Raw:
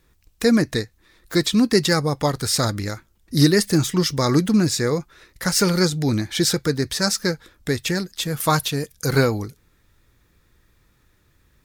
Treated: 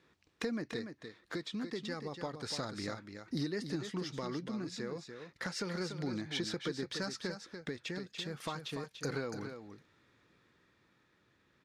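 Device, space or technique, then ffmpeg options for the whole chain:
AM radio: -af "highpass=180,lowpass=4200,acompressor=threshold=0.0251:ratio=6,asoftclip=type=tanh:threshold=0.106,tremolo=f=0.31:d=0.33,aecho=1:1:290:0.398,volume=0.75"

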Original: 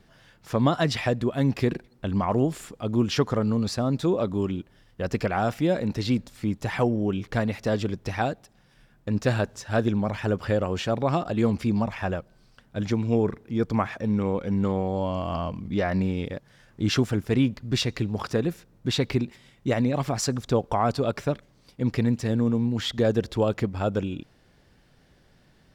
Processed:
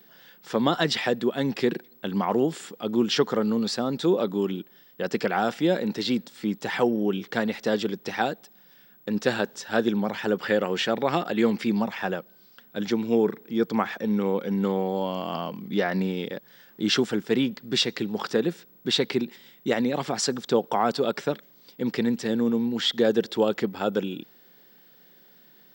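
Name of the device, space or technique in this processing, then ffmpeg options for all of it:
old television with a line whistle: -filter_complex "[0:a]highpass=f=200:w=0.5412,highpass=f=200:w=1.3066,equalizer=f=270:t=q:w=4:g=-6,equalizer=f=630:t=q:w=4:g=-7,equalizer=f=1100:t=q:w=4:g=-5,equalizer=f=2400:t=q:w=4:g=-4,equalizer=f=3400:t=q:w=4:g=3,equalizer=f=6500:t=q:w=4:g=-4,lowpass=f=8500:w=0.5412,lowpass=f=8500:w=1.3066,aeval=exprs='val(0)+0.00141*sin(2*PI*15734*n/s)':c=same,asettb=1/sr,asplit=3[s0][s1][s2];[s0]atrim=end=10.394[s3];[s1]atrim=start=10.39:end=11.76,asetpts=PTS-STARTPTS,afade=t=in:d=0.004:c=qsin,afade=t=out:st=1.366:d=0.004:c=qsin,equalizer=f=2000:t=o:w=0.83:g=6[s4];[s2]atrim=start=11.756[s5];[s3][s4]acrossfade=d=0.004:c1=hsin:c2=qsin[s6];[s6][s5]acrossfade=d=0.004:c1=qsin:c2=hsin,volume=1.58"

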